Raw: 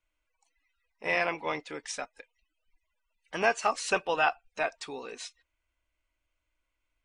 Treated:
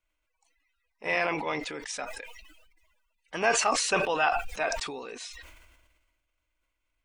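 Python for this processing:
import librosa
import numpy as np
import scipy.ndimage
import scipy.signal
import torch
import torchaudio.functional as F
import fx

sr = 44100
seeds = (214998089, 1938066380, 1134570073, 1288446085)

y = fx.sustainer(x, sr, db_per_s=39.0)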